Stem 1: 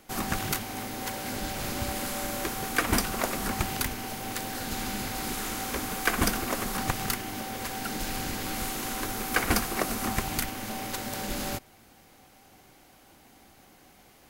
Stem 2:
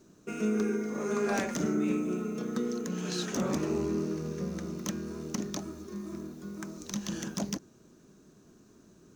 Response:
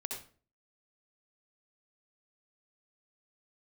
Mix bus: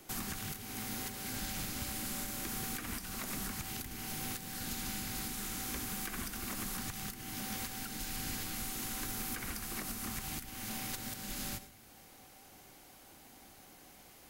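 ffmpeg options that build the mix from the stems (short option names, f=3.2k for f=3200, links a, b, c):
-filter_complex "[0:a]alimiter=limit=-17dB:level=0:latency=1:release=71,highshelf=f=4.5k:g=6,volume=-5dB,asplit=2[a][b];[b]volume=-8.5dB[c];[1:a]acompressor=threshold=-38dB:ratio=6,volume=-5.5dB[d];[2:a]atrim=start_sample=2205[e];[c][e]afir=irnorm=-1:irlink=0[f];[a][d][f]amix=inputs=3:normalize=0,acrossover=split=300|1000[g][h][i];[g]acompressor=threshold=-38dB:ratio=4[j];[h]acompressor=threshold=-57dB:ratio=4[k];[i]acompressor=threshold=-37dB:ratio=4[l];[j][k][l]amix=inputs=3:normalize=0,alimiter=level_in=4dB:limit=-24dB:level=0:latency=1:release=429,volume=-4dB"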